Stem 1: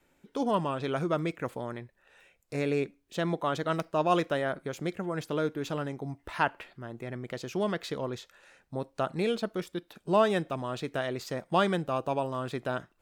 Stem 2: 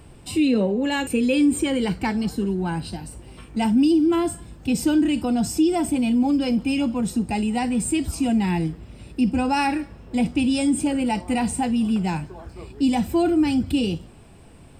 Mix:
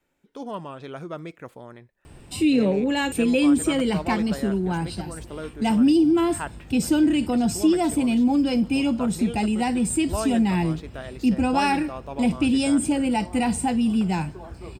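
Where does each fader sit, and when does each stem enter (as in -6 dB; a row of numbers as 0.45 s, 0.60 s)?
-5.5 dB, 0.0 dB; 0.00 s, 2.05 s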